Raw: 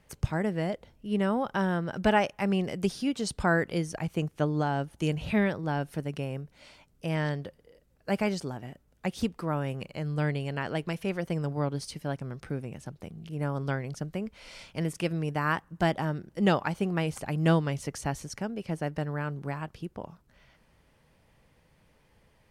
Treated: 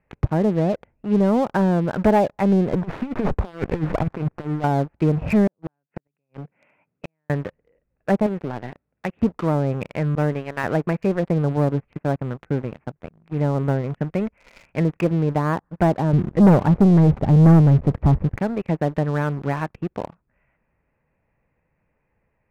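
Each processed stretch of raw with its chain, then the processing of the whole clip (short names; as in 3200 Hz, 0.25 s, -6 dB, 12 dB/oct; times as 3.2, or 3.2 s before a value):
2.73–4.64 negative-ratio compressor -32 dBFS, ratio -0.5 + running maximum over 17 samples
5.47–7.3 HPF 120 Hz 24 dB/oct + compressor 1.5:1, threshold -40 dBFS + flipped gate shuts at -27 dBFS, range -36 dB
8.26–9.22 HPF 89 Hz + compressor 5:1, threshold -32 dBFS
10.15–10.64 expander -29 dBFS + low shelf 160 Hz -8 dB
11.92–13.95 gate -41 dBFS, range -7 dB + high shelf 7400 Hz +3.5 dB + decimation joined by straight lines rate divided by 8×
16.13–18.38 G.711 law mismatch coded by mu + low shelf 310 Hz +10.5 dB
whole clip: Chebyshev low-pass 2600 Hz, order 6; treble ducked by the level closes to 760 Hz, closed at -26 dBFS; sample leveller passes 3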